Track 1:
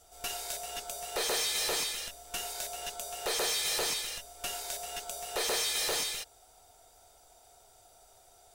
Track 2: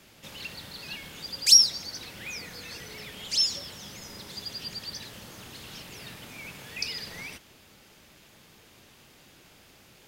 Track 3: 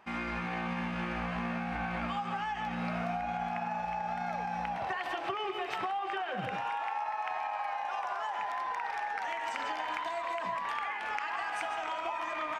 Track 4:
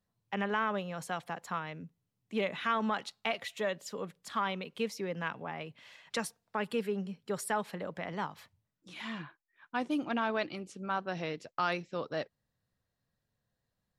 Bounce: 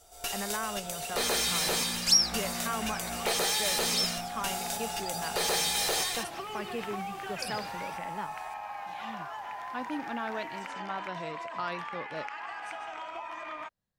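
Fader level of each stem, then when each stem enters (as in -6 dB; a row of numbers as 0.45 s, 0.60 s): +2.0 dB, -6.5 dB, -4.5 dB, -4.0 dB; 0.00 s, 0.60 s, 1.10 s, 0.00 s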